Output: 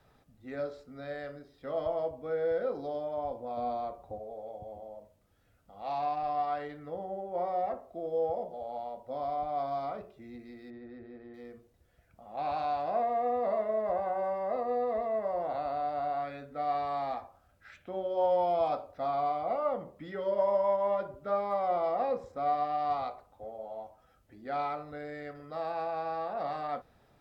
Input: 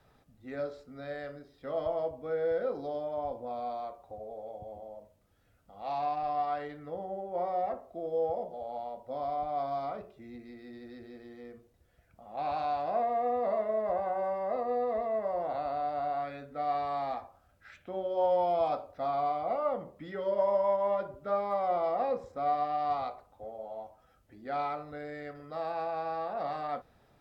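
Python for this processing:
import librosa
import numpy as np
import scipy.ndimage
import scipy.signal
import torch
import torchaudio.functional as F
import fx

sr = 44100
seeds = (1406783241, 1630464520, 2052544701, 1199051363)

y = fx.low_shelf(x, sr, hz=450.0, db=9.0, at=(3.57, 4.18))
y = fx.lowpass(y, sr, hz=2000.0, slope=12, at=(10.7, 11.34))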